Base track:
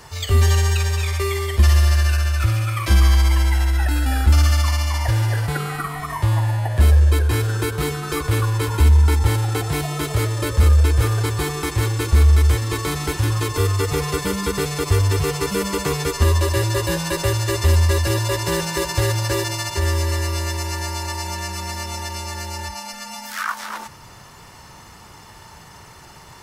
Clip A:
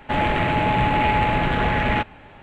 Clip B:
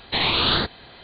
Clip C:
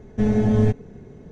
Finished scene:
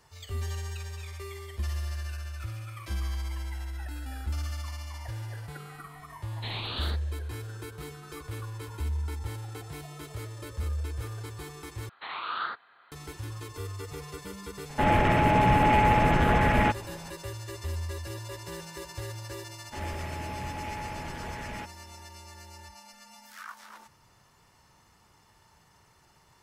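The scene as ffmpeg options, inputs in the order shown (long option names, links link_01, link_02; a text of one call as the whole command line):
ffmpeg -i bed.wav -i cue0.wav -i cue1.wav -filter_complex "[2:a]asplit=2[link_01][link_02];[1:a]asplit=2[link_03][link_04];[0:a]volume=-18.5dB[link_05];[link_02]bandpass=frequency=1300:width_type=q:width=4.3:csg=0[link_06];[link_03]aemphasis=mode=reproduction:type=75fm[link_07];[link_05]asplit=2[link_08][link_09];[link_08]atrim=end=11.894[link_10];[link_06]atrim=end=1.03,asetpts=PTS-STARTPTS,volume=-2dB[link_11];[link_09]atrim=start=12.916[link_12];[link_01]atrim=end=1.03,asetpts=PTS-STARTPTS,volume=-15.5dB,afade=type=in:duration=0.004:curve=hsin,afade=type=out:start_time=1.026:duration=0.004:curve=hsin,adelay=6300[link_13];[link_07]atrim=end=2.42,asetpts=PTS-STARTPTS,volume=-2dB,afade=type=in:duration=0.004:curve=hsin,afade=type=out:start_time=2.416:duration=0.004:curve=hsin,adelay=14690[link_14];[link_04]atrim=end=2.42,asetpts=PTS-STARTPTS,volume=-18dB,afade=type=in:duration=0.004:curve=hsin,afade=type=out:start_time=2.416:duration=0.004:curve=hsin,adelay=19630[link_15];[link_10][link_11]acrossfade=duration=0.004:curve1=hsin:curve2=hsin[link_16];[link_16][link_12]acrossfade=duration=0.004:curve1=hsin:curve2=hsin[link_17];[link_17][link_13][link_14][link_15]amix=inputs=4:normalize=0" out.wav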